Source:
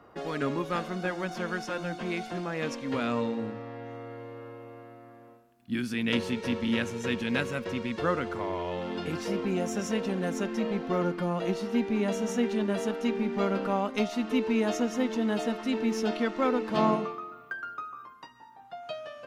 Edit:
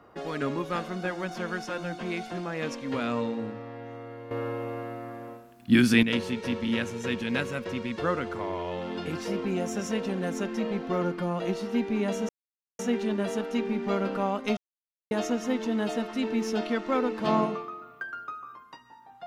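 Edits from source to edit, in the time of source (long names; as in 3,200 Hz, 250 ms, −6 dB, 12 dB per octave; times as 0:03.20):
0:04.31–0:06.03: clip gain +11.5 dB
0:12.29: splice in silence 0.50 s
0:14.07–0:14.61: silence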